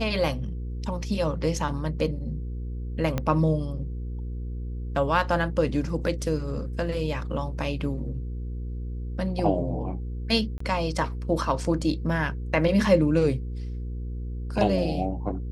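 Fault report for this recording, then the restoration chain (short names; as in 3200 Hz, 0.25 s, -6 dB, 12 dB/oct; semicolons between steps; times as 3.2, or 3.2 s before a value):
hum 60 Hz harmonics 8 -32 dBFS
3.18 pop -13 dBFS
10.58–10.6 gap 24 ms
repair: de-click; de-hum 60 Hz, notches 8; interpolate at 10.58, 24 ms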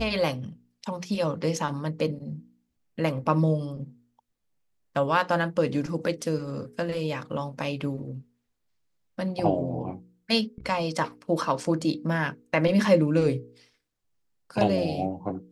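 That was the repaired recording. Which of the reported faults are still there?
3.18 pop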